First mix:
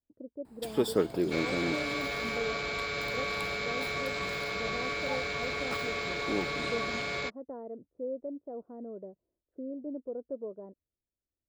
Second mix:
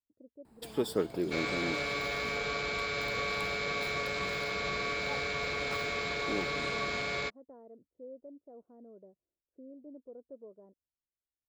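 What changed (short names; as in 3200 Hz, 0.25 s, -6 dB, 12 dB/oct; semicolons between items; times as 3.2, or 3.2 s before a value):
speech -11.0 dB; first sound -3.5 dB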